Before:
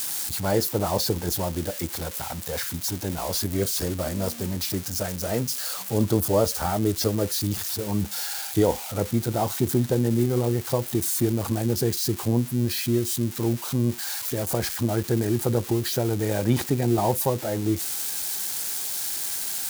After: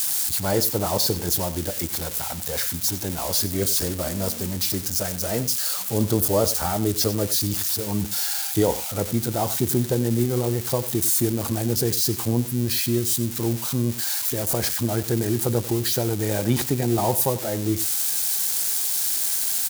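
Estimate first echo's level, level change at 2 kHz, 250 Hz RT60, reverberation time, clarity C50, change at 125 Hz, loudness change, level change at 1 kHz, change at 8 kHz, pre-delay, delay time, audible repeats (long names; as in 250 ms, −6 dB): −15.0 dB, +1.5 dB, no reverb audible, no reverb audible, no reverb audible, 0.0 dB, +3.0 dB, +0.5 dB, +5.5 dB, no reverb audible, 94 ms, 1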